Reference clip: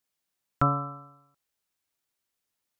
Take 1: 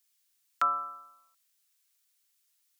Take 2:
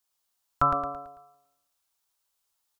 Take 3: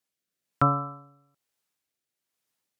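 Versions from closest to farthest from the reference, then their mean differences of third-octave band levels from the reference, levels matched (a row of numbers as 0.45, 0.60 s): 3, 2, 1; 1.0, 5.0, 8.0 dB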